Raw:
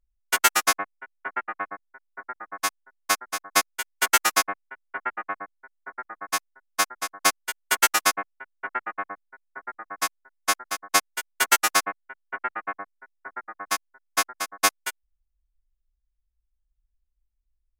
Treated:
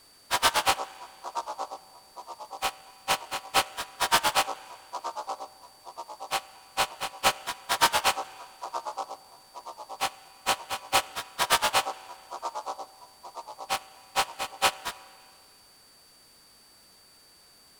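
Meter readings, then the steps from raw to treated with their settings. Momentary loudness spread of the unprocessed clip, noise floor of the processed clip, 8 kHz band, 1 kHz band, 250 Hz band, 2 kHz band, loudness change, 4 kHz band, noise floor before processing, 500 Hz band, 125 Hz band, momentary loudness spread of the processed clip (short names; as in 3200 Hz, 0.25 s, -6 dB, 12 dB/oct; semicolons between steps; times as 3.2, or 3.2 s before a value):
20 LU, -57 dBFS, -7.0 dB, -1.0 dB, -4.0 dB, -5.5 dB, -3.5 dB, 0.0 dB, -77 dBFS, +1.0 dB, n/a, 20 LU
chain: inharmonic rescaling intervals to 77%; HPF 400 Hz 12 dB/oct; whine 4600 Hz -52 dBFS; spring tank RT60 2.1 s, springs 31/44 ms, chirp 50 ms, DRR 17 dB; noise-modulated delay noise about 4500 Hz, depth 0.031 ms; gain -1.5 dB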